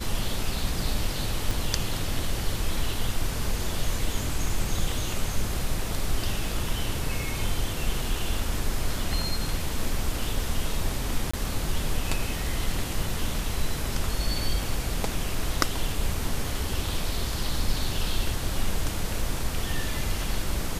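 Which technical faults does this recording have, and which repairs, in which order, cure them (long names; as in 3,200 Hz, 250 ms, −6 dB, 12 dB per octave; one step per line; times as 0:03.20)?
0:01.51: click
0:11.31–0:11.34: drop-out 25 ms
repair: click removal
repair the gap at 0:11.31, 25 ms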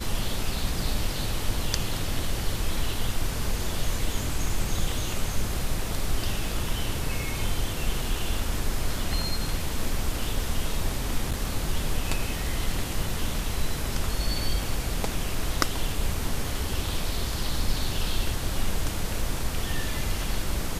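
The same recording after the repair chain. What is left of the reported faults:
none of them is left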